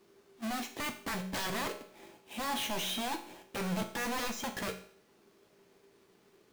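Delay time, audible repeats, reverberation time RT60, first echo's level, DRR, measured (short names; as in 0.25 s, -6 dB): none, none, 0.55 s, none, 4.5 dB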